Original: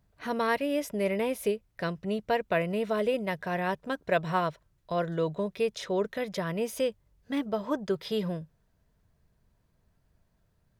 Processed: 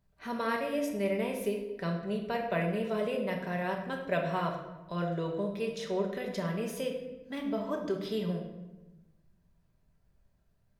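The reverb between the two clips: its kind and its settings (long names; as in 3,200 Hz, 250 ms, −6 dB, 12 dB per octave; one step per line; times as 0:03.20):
rectangular room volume 500 cubic metres, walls mixed, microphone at 1.2 metres
level −6 dB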